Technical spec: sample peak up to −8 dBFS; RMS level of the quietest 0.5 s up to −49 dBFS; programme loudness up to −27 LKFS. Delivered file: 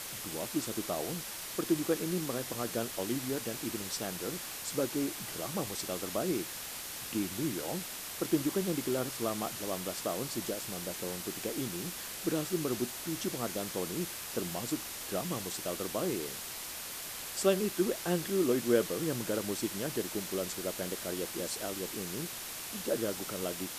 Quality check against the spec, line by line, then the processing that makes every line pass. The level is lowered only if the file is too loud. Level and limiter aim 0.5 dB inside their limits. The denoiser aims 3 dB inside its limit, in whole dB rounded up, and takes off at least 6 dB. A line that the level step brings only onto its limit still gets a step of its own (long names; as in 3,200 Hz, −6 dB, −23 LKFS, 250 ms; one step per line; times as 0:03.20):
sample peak −13.5 dBFS: in spec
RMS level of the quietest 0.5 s −42 dBFS: out of spec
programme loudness −34.5 LKFS: in spec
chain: broadband denoise 10 dB, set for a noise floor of −42 dBFS